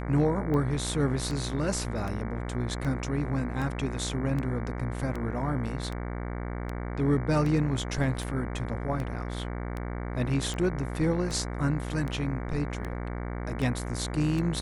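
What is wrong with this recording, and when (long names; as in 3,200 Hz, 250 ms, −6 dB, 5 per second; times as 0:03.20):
mains buzz 60 Hz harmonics 38 −34 dBFS
scratch tick 78 rpm −22 dBFS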